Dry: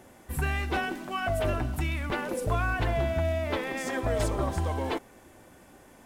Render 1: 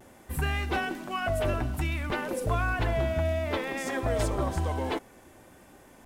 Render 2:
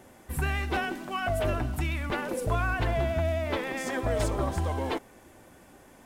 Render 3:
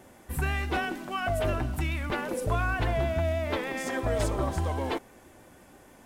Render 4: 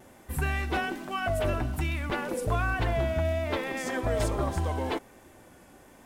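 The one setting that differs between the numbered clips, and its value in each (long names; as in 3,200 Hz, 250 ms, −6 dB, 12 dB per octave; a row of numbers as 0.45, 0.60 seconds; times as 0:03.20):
pitch vibrato, speed: 0.58, 11, 6.3, 1.2 Hertz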